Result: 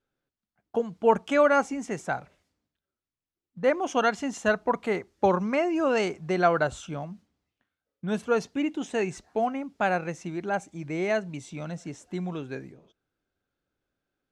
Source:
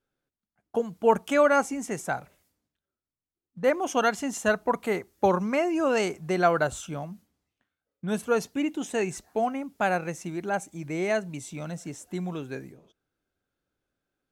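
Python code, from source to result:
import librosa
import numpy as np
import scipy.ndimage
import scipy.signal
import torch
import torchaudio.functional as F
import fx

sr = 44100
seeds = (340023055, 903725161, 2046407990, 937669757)

y = scipy.signal.sosfilt(scipy.signal.butter(2, 5700.0, 'lowpass', fs=sr, output='sos'), x)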